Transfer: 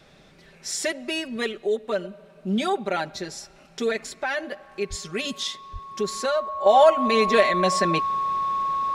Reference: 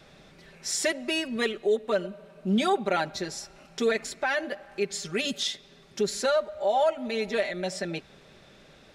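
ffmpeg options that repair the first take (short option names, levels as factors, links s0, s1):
-filter_complex "[0:a]bandreject=f=1100:w=30,asplit=3[s0][s1][s2];[s0]afade=t=out:st=4.89:d=0.02[s3];[s1]highpass=f=140:w=0.5412,highpass=f=140:w=1.3066,afade=t=in:st=4.89:d=0.02,afade=t=out:st=5.01:d=0.02[s4];[s2]afade=t=in:st=5.01:d=0.02[s5];[s3][s4][s5]amix=inputs=3:normalize=0,asplit=3[s6][s7][s8];[s6]afade=t=out:st=5.72:d=0.02[s9];[s7]highpass=f=140:w=0.5412,highpass=f=140:w=1.3066,afade=t=in:st=5.72:d=0.02,afade=t=out:st=5.84:d=0.02[s10];[s8]afade=t=in:st=5.84:d=0.02[s11];[s9][s10][s11]amix=inputs=3:normalize=0,asetnsamples=n=441:p=0,asendcmd='6.66 volume volume -8.5dB',volume=1"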